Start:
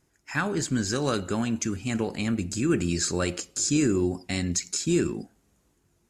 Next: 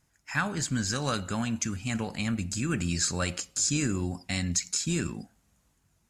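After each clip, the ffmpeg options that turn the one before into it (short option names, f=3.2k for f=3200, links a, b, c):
-af "equalizer=f=370:w=1.7:g=-12"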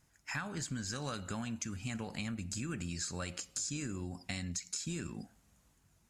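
-af "acompressor=threshold=-37dB:ratio=5"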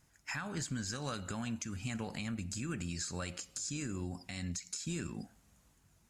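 -af "alimiter=level_in=5.5dB:limit=-24dB:level=0:latency=1:release=157,volume=-5.5dB,volume=1.5dB"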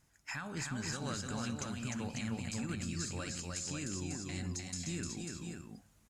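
-af "aecho=1:1:303|544:0.668|0.531,volume=-2dB"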